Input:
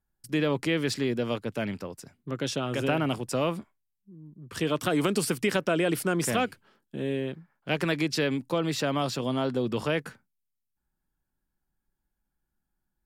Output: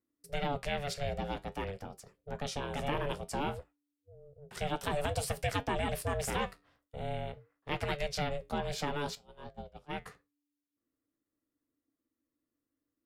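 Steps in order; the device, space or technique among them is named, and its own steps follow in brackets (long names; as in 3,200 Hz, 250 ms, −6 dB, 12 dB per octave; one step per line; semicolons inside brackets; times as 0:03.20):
0:09.15–0:10.02: noise gate −24 dBFS, range −26 dB
alien voice (ring modulation 290 Hz; flanger 0.53 Hz, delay 9.2 ms, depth 4.1 ms, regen −68%)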